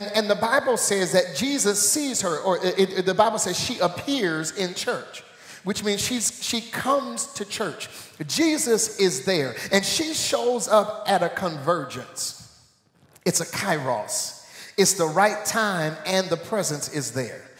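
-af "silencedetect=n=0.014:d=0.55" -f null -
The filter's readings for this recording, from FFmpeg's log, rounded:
silence_start: 12.45
silence_end: 13.16 | silence_duration: 0.71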